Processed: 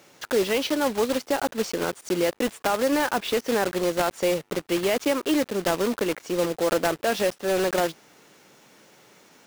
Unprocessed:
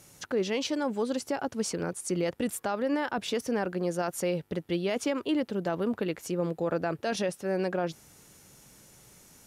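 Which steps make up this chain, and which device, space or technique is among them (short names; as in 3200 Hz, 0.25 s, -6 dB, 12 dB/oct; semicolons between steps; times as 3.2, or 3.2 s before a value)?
early digital voice recorder (BPF 280–3800 Hz; block floating point 3-bit); gain +7 dB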